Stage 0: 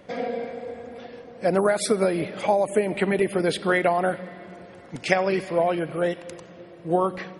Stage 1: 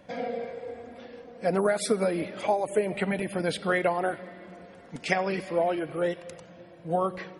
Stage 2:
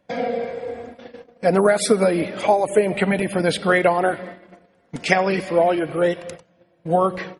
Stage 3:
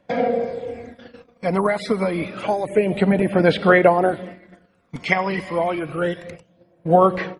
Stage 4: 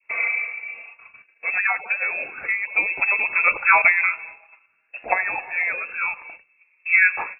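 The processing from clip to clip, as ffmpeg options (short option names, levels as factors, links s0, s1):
-af "flanger=delay=1.2:depth=3.2:regen=-51:speed=0.3:shape=sinusoidal"
-af "agate=range=0.112:threshold=0.00708:ratio=16:detection=peak,volume=2.66"
-filter_complex "[0:a]acrossover=split=4100[s0][s1];[s1]acompressor=threshold=0.00355:ratio=4:attack=1:release=60[s2];[s0][s2]amix=inputs=2:normalize=0,aphaser=in_gain=1:out_gain=1:delay=1:decay=0.52:speed=0.28:type=sinusoidal,volume=0.794"
-af "adynamicequalizer=threshold=0.0355:dfrequency=1500:dqfactor=0.76:tfrequency=1500:tqfactor=0.76:attack=5:release=100:ratio=0.375:range=3:mode=boostabove:tftype=bell,lowpass=f=2400:t=q:w=0.5098,lowpass=f=2400:t=q:w=0.6013,lowpass=f=2400:t=q:w=0.9,lowpass=f=2400:t=q:w=2.563,afreqshift=-2800,volume=0.596"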